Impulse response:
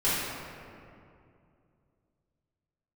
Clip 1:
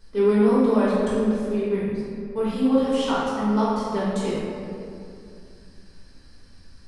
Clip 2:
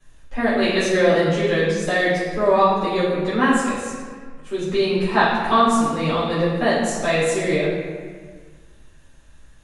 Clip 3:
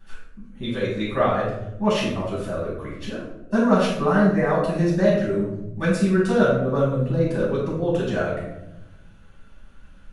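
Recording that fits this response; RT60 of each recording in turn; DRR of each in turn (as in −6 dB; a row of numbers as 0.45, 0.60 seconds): 1; 2.5, 1.6, 0.85 seconds; −11.5, −11.0, −8.0 decibels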